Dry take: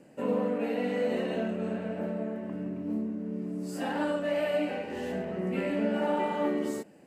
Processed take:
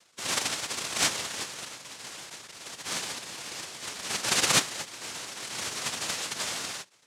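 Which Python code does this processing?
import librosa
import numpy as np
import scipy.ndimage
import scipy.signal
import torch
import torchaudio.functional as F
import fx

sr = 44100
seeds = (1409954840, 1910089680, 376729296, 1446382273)

y = fx.sine_speech(x, sr)
y = fx.cheby2_lowpass(y, sr, hz=1900.0, order=4, stop_db=60, at=(1.64, 2.29), fade=0.02)
y = fx.noise_vocoder(y, sr, seeds[0], bands=1)
y = y * 10.0 ** (-2.0 / 20.0)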